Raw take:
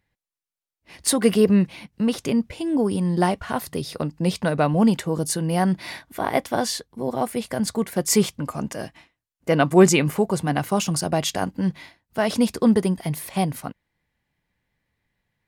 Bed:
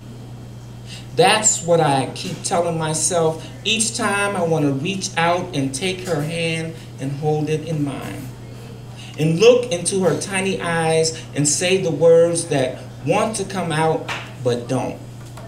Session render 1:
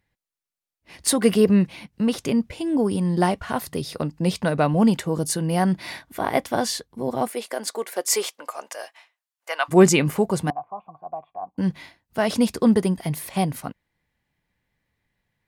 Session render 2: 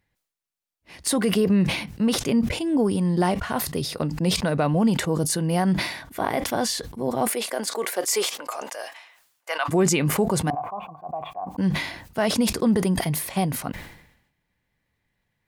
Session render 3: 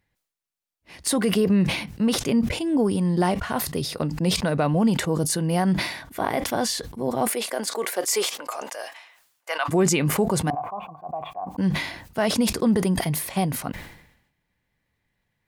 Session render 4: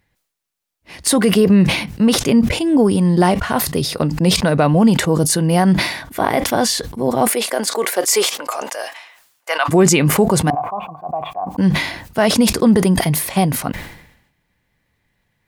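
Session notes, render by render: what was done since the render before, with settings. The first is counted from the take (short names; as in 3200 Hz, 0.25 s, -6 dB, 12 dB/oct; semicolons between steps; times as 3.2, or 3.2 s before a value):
7.28–9.68 HPF 300 Hz -> 820 Hz 24 dB/oct; 10.5–11.58 vocal tract filter a
limiter -12.5 dBFS, peak gain reduction 8 dB; sustainer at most 70 dB/s
nothing audible
gain +8 dB; limiter -2 dBFS, peak gain reduction 1.5 dB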